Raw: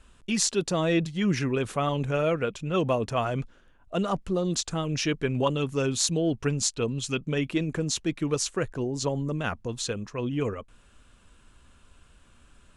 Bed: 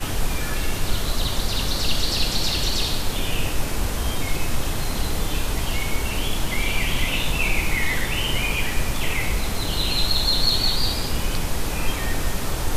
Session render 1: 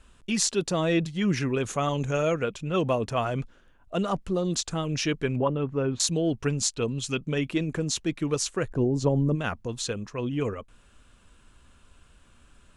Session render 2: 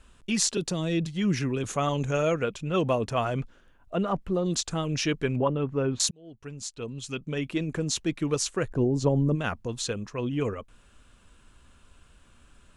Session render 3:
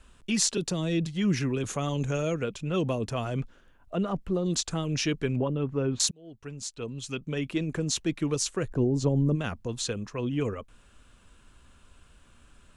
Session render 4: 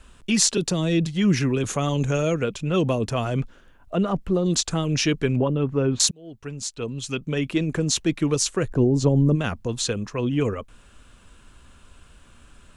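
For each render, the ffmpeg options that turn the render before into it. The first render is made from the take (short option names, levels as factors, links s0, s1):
-filter_complex "[0:a]asettb=1/sr,asplit=3[s0][s1][s2];[s0]atrim=end=1.664[s3];[s1]atrim=start=1.66:end=2.44,asetpts=PTS-STARTPTS,afade=t=in:d=0.004:c=qsin,afade=t=out:st=0.776:d=0.004:c=qsin,equalizer=f=6600:t=o:w=0.25:g=14.5[s4];[s2]atrim=start=2.436[s5];[s3][s4]acrossfade=d=0.004:c1=hsin:c2=qsin[s6];[s6][s5]acrossfade=d=0.004:c1=qsin:c2=hsin,asettb=1/sr,asplit=3[s7][s8][s9];[s7]atrim=end=5.364[s10];[s8]atrim=start=5.36:end=6,asetpts=PTS-STARTPTS,afade=t=in:d=0.004:c=qsin,afade=t=out:st=0.636:d=0.004:c=qsin,lowpass=1500[s11];[s9]atrim=start=5.996[s12];[s10][s11]acrossfade=d=0.004:c1=hsin:c2=qsin[s13];[s13][s12]acrossfade=d=0.004:c1=qsin:c2=hsin,asplit=3[s14][s15][s16];[s14]afade=t=out:st=8.69:d=0.02[s17];[s15]tiltshelf=f=940:g=7,afade=t=in:st=8.69:d=0.02,afade=t=out:st=9.34:d=0.02[s18];[s16]afade=t=in:st=9.34:d=0.02[s19];[s17][s18][s19]amix=inputs=3:normalize=0"
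-filter_complex "[0:a]asettb=1/sr,asplit=3[s0][s1][s2];[s0]atrim=end=0.574[s3];[s1]atrim=start=0.57:end=1.64,asetpts=PTS-STARTPTS,afade=t=in:d=0.004:c=qsin,afade=t=out:st=1.066:d=0.004:c=qsin,acrossover=split=350|3000[s4][s5][s6];[s5]acompressor=threshold=0.0178:ratio=6:attack=3.2:release=140:knee=2.83:detection=peak[s7];[s4][s7][s6]amix=inputs=3:normalize=0[s8];[s2]atrim=start=1.636[s9];[s3][s8]acrossfade=d=0.004:c1=hsin:c2=qsin[s10];[s10][s9]acrossfade=d=0.004:c1=qsin:c2=hsin,asettb=1/sr,asplit=3[s11][s12][s13];[s11]atrim=end=3.404[s14];[s12]atrim=start=3.4:end=4.46,asetpts=PTS-STARTPTS,afade=t=in:d=0.004:c=qsin,afade=t=out:st=1.056:d=0.004:c=qsin,acrossover=split=2900[s15][s16];[s16]acompressor=threshold=0.001:ratio=4:attack=1:release=60[s17];[s15][s17]amix=inputs=2:normalize=0[s18];[s13]atrim=start=4.456[s19];[s14][s18]acrossfade=d=0.004:c1=hsin:c2=qsin[s20];[s20][s19]acrossfade=d=0.004:c1=qsin:c2=hsin,asplit=2[s21][s22];[s21]atrim=end=6.11,asetpts=PTS-STARTPTS,afade=t=out:st=6.106:d=0.004:c=hsin[s23];[s22]atrim=start=6.11,asetpts=PTS-STARTPTS,afade=t=in:d=1.84[s24];[s23][s24]concat=n=2:v=0:a=1"
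-filter_complex "[0:a]acrossover=split=420|3000[s0][s1][s2];[s1]acompressor=threshold=0.02:ratio=4[s3];[s0][s3][s2]amix=inputs=3:normalize=0"
-af "volume=2"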